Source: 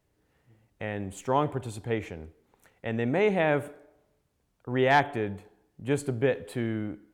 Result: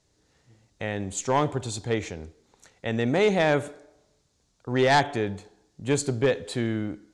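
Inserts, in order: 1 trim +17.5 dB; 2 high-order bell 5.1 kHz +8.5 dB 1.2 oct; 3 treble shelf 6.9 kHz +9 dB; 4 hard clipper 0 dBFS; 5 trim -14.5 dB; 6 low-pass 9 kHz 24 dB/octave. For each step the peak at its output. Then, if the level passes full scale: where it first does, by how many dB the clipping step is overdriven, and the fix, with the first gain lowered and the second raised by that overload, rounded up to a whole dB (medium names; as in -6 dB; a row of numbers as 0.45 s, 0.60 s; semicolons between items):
+7.0 dBFS, +7.0 dBFS, +8.0 dBFS, 0.0 dBFS, -14.5 dBFS, -13.5 dBFS; step 1, 8.0 dB; step 1 +9.5 dB, step 5 -6.5 dB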